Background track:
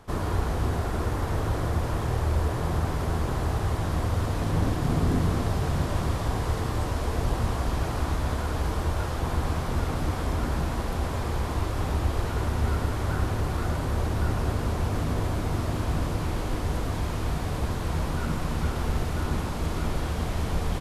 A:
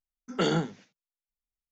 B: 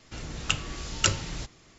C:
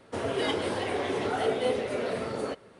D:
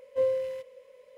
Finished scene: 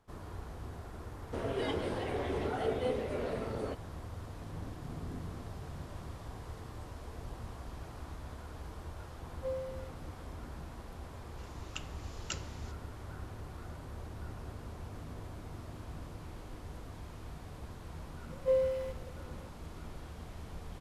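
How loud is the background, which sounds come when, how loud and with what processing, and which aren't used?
background track -18 dB
1.20 s: add C -7.5 dB + tilt EQ -1.5 dB/octave
9.27 s: add D -12 dB
11.26 s: add B -16.5 dB
18.30 s: add D -2.5 dB
not used: A

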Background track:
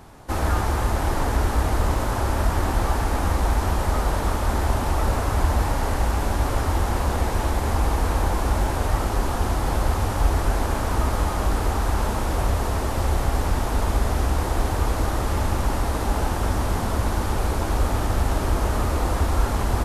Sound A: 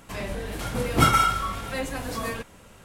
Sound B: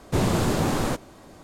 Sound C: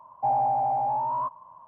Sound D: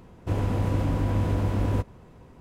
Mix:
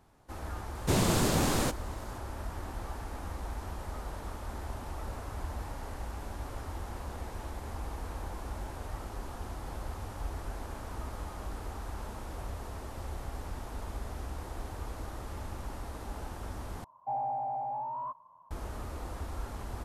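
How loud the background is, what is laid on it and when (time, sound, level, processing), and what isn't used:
background track -17.5 dB
0.75 s: add B -5 dB + treble shelf 3 kHz +7.5 dB
16.84 s: replace with C -9.5 dB
not used: A, D

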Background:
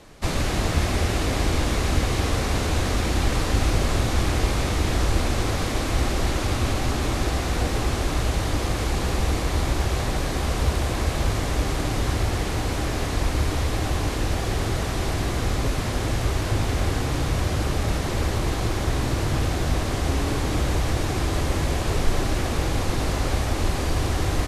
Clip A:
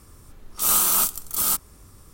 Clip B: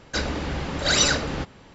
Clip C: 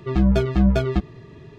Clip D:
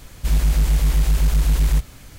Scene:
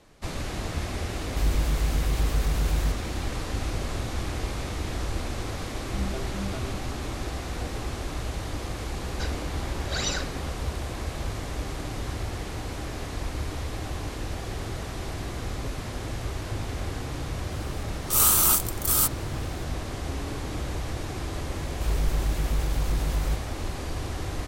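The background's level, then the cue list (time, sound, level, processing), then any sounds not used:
background -8.5 dB
1.12 s: add D -8.5 dB
5.78 s: add C -17 dB
9.06 s: add B -10 dB
17.51 s: add A -0.5 dB
21.56 s: add D -10 dB

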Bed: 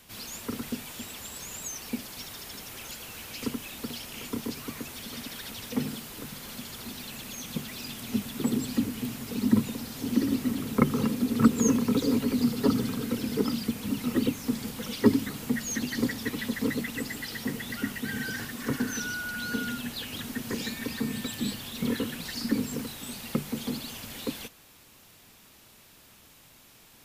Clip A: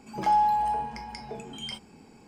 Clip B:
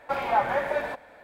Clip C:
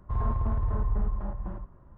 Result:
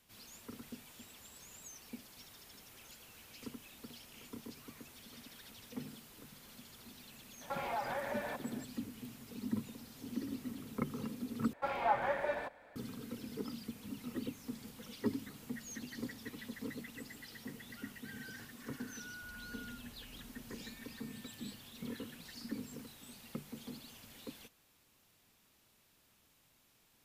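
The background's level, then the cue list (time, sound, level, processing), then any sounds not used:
bed -15 dB
7.41 s: add B -4.5 dB + compression 3:1, threshold -33 dBFS
11.53 s: replace with B -8.5 dB
19.13 s: add C -17 dB + compression 2.5:1, threshold -47 dBFS
not used: A

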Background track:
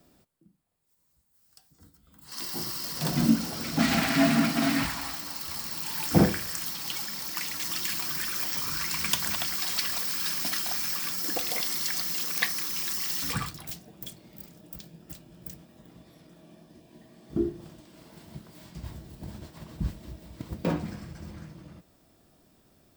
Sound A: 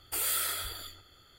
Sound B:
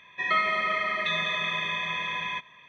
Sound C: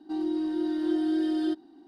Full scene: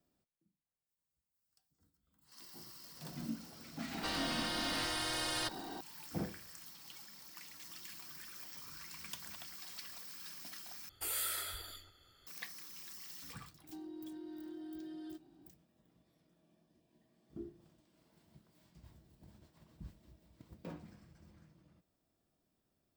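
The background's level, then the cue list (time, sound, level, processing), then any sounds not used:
background track -19.5 dB
3.94 s: add C -6.5 dB + spectrum-flattening compressor 10:1
10.89 s: replace with A -7 dB
13.63 s: add C -11 dB + compression, threshold -34 dBFS
not used: B

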